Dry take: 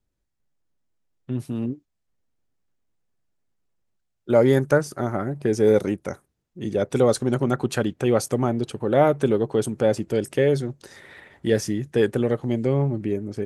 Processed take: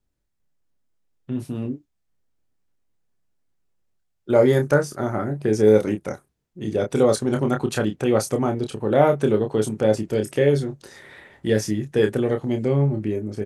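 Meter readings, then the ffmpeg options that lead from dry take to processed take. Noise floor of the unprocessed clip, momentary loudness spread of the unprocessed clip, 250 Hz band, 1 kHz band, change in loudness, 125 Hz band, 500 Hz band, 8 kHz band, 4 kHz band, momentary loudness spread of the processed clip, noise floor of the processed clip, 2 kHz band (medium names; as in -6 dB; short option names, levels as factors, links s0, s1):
-76 dBFS, 12 LU, +1.0 dB, +1.0 dB, +1.0 dB, +1.5 dB, +1.0 dB, +1.0 dB, +1.0 dB, 14 LU, -74 dBFS, +1.0 dB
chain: -filter_complex "[0:a]asplit=2[s0][s1];[s1]adelay=28,volume=0.501[s2];[s0][s2]amix=inputs=2:normalize=0"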